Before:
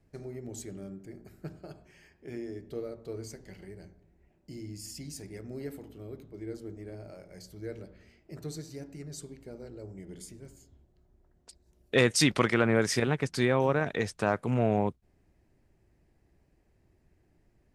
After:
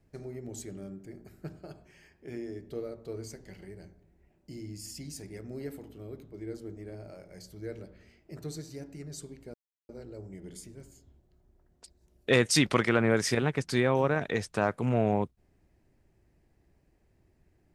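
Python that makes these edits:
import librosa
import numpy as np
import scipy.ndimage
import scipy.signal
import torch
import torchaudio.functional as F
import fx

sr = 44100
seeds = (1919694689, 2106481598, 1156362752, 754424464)

y = fx.edit(x, sr, fx.insert_silence(at_s=9.54, length_s=0.35), tone=tone)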